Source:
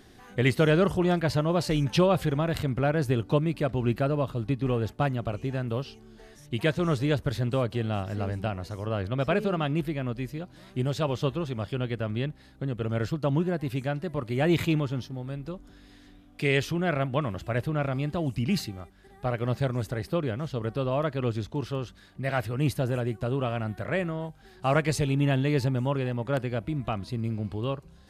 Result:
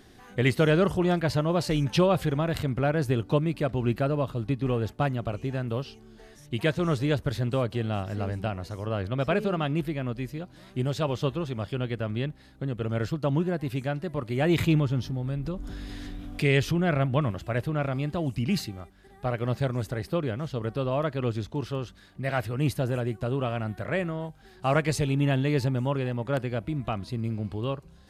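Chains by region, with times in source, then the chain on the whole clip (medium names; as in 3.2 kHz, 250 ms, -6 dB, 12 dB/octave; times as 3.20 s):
14.58–17.31 s: bass shelf 160 Hz +8 dB + upward compressor, threshold -25 dBFS
whole clip: none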